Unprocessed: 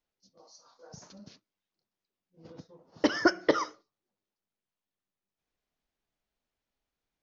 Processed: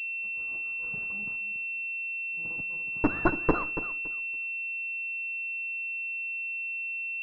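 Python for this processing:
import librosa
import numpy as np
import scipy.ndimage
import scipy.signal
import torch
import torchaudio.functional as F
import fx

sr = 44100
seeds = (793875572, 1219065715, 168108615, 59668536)

y = fx.lower_of_two(x, sr, delay_ms=0.71)
y = fx.echo_feedback(y, sr, ms=282, feedback_pct=20, wet_db=-12)
y = fx.pwm(y, sr, carrier_hz=2700.0)
y = y * 10.0 ** (2.5 / 20.0)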